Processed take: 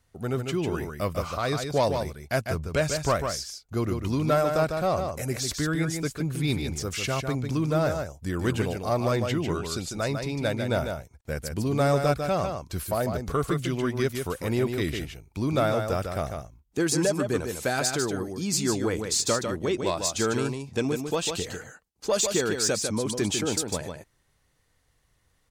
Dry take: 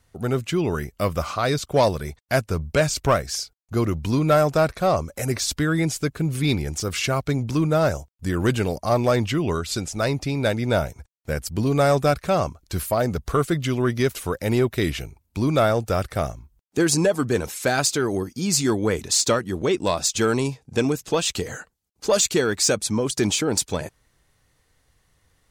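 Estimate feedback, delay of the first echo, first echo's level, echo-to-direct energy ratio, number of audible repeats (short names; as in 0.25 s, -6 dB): no steady repeat, 0.149 s, -6.0 dB, -6.0 dB, 1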